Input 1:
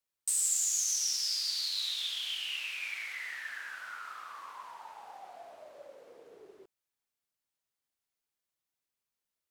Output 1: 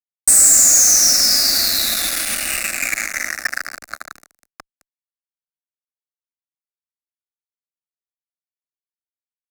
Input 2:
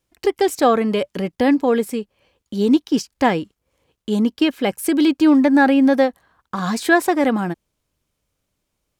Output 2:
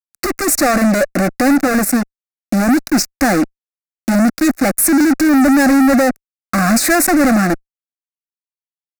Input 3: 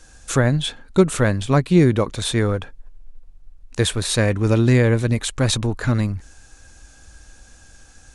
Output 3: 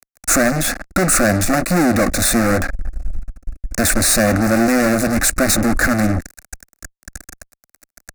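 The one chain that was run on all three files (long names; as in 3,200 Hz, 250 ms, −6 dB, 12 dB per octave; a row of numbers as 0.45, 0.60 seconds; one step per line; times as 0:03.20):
fuzz pedal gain 37 dB, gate −37 dBFS
phaser with its sweep stopped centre 640 Hz, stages 8
normalise the peak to −3 dBFS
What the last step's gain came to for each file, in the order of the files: +8.0, +4.5, +4.5 decibels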